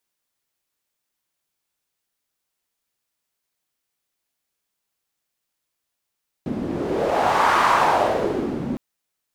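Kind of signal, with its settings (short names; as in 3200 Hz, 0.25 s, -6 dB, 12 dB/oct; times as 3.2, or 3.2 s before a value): wind-like swept noise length 2.31 s, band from 240 Hz, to 1100 Hz, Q 2.8, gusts 1, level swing 9.5 dB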